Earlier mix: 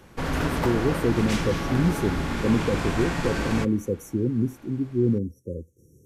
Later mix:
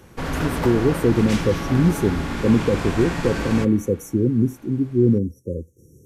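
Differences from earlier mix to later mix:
speech +5.5 dB; background: send +8.0 dB

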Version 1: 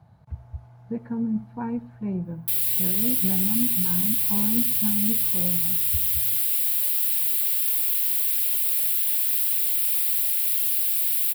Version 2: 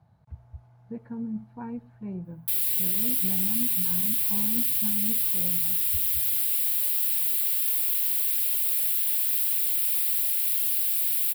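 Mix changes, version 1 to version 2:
speech -6.0 dB; reverb: off

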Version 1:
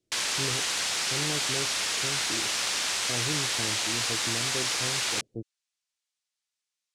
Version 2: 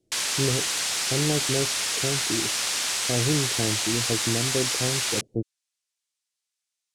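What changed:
speech +9.5 dB; background: add high shelf 9500 Hz +10.5 dB

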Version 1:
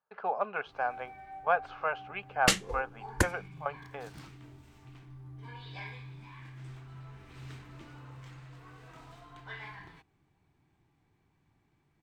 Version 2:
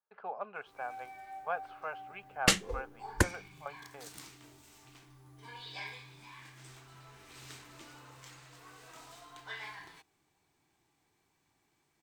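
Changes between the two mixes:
speech -8.5 dB; first sound: add tone controls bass -12 dB, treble +13 dB

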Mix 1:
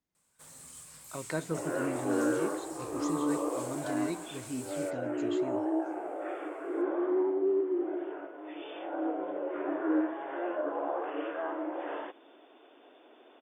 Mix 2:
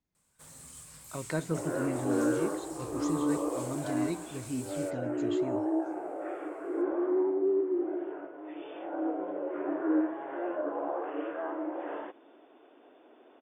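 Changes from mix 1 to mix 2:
second sound: add air absorption 330 m; master: add low shelf 160 Hz +8.5 dB

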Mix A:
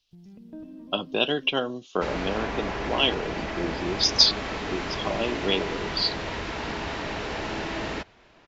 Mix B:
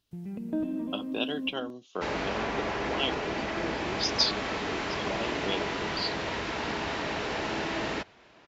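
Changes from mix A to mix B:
speech -8.0 dB; first sound +11.5 dB; master: add HPF 120 Hz 6 dB/oct

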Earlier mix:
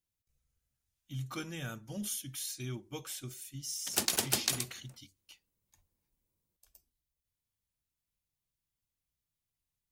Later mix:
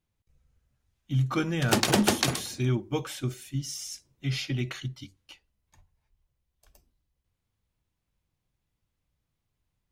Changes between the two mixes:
background: entry -2.25 s; master: remove pre-emphasis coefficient 0.8

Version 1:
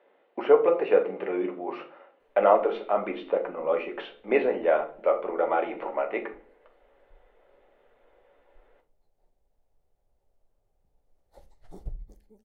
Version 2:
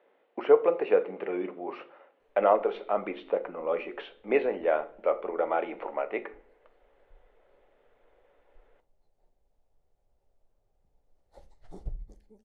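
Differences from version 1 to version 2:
speech: send -9.0 dB; master: add LPF 8900 Hz

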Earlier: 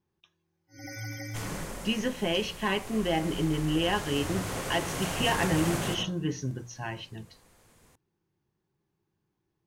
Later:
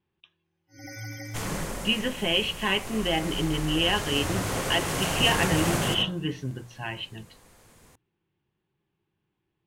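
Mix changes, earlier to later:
speech: add synth low-pass 3000 Hz, resonance Q 2.5; second sound +5.0 dB

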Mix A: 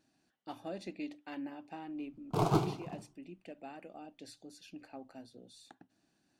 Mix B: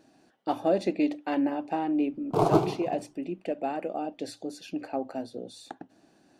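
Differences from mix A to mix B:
speech +9.0 dB; master: add bell 520 Hz +10 dB 2.2 oct

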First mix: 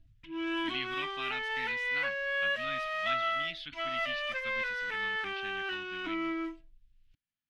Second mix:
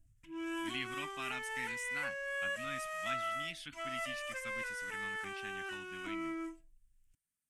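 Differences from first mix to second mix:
background -5.5 dB; master: add resonant high shelf 5800 Hz +14 dB, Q 3

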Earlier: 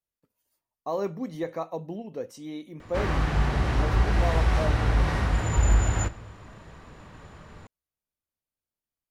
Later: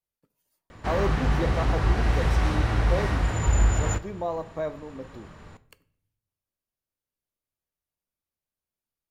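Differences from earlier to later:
speech: send on; background: entry -2.10 s

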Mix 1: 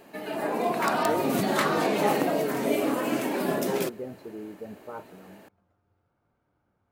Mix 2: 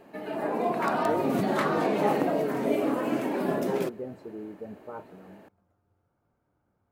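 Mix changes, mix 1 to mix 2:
speech: remove LPF 3900 Hz; master: add high shelf 2600 Hz -11.5 dB

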